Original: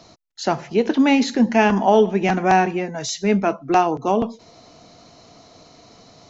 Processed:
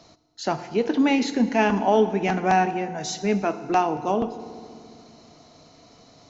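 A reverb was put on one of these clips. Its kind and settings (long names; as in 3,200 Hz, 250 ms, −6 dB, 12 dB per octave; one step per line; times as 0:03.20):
feedback delay network reverb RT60 2.3 s, low-frequency decay 1.5×, high-frequency decay 0.75×, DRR 11.5 dB
level −4.5 dB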